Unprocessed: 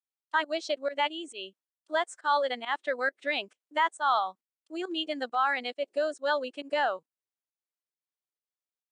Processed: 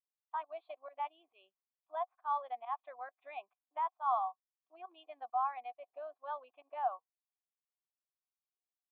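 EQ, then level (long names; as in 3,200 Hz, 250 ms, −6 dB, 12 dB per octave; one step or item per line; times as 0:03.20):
formant resonators in series a
spectral tilt +6 dB per octave
high-shelf EQ 3,400 Hz +11.5 dB
+2.0 dB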